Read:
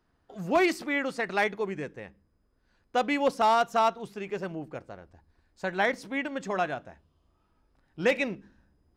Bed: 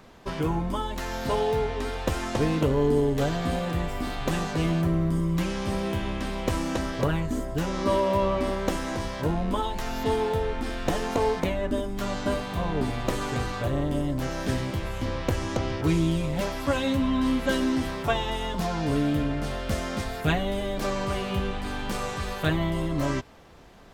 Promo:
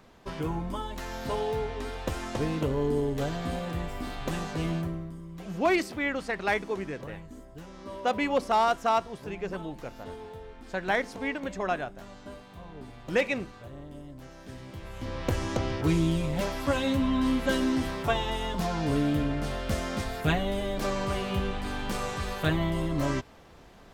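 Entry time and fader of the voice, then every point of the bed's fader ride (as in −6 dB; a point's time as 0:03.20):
5.10 s, −1.0 dB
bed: 0:04.76 −5 dB
0:05.17 −17 dB
0:14.50 −17 dB
0:15.33 −1.5 dB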